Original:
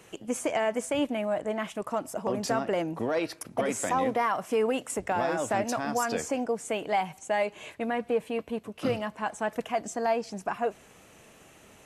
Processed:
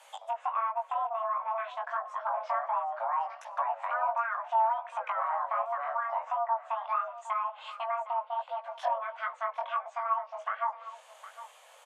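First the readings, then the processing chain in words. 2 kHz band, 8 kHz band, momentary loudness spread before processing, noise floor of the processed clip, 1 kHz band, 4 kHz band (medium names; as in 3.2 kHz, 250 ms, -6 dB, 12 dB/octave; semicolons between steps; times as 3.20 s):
-4.5 dB, under -20 dB, 6 LU, -56 dBFS, +2.5 dB, under -10 dB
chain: low-pass that closes with the level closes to 860 Hz, closed at -25.5 dBFS; chorus 1.4 Hz, delay 16 ms, depth 6.8 ms; low-pass that closes with the level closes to 2.5 kHz, closed at -28.5 dBFS; frequency shift +450 Hz; delay 761 ms -15 dB; trim +1 dB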